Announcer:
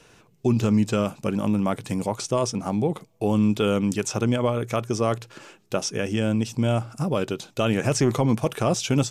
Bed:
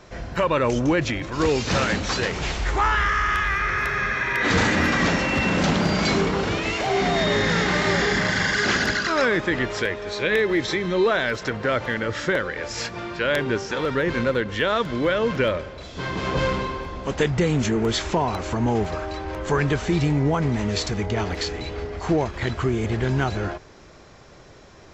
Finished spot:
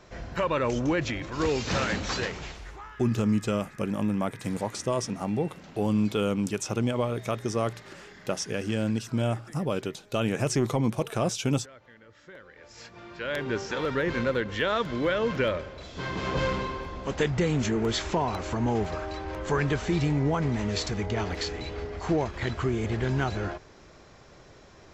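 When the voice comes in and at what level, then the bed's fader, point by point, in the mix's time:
2.55 s, −4.5 dB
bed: 0:02.22 −5.5 dB
0:03.00 −28 dB
0:12.17 −28 dB
0:13.60 −4.5 dB

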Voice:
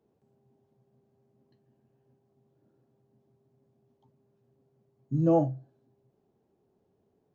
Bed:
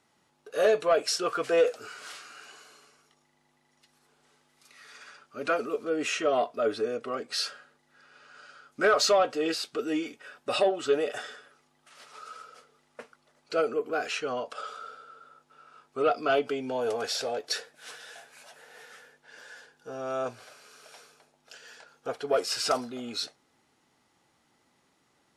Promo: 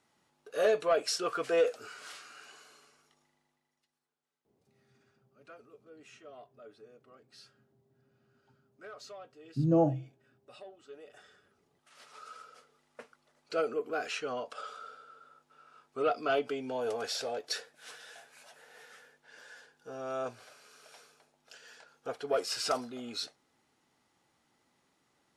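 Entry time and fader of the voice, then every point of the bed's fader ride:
4.45 s, −2.0 dB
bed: 0:03.25 −4 dB
0:04.20 −25.5 dB
0:10.90 −25.5 dB
0:11.99 −4.5 dB

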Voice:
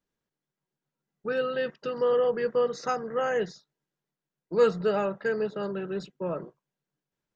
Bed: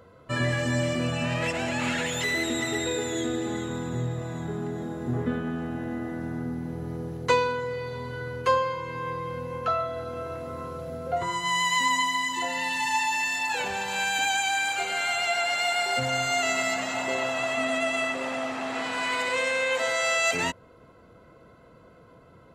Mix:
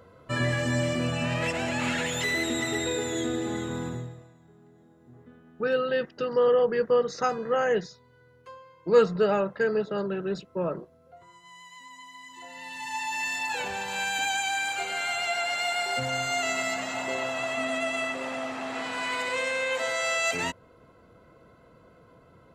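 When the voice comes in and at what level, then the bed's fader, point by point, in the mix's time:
4.35 s, +2.5 dB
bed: 0:03.87 −0.5 dB
0:04.38 −24 dB
0:11.89 −24 dB
0:13.27 −2.5 dB

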